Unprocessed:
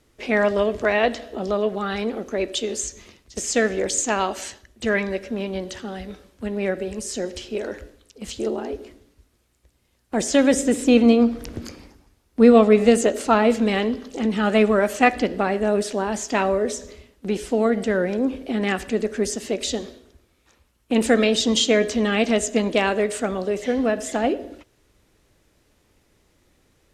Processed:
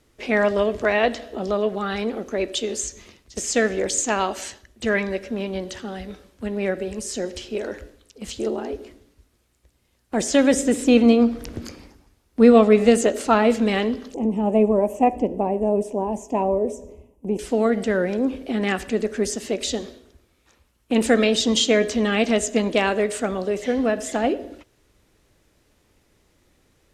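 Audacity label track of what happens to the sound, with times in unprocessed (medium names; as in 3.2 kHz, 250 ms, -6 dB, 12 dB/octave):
14.140000	17.390000	FFT filter 1 kHz 0 dB, 1.4 kHz -29 dB, 2.6 kHz -12 dB, 4.2 kHz -30 dB, 5.9 kHz -14 dB, 10 kHz -8 dB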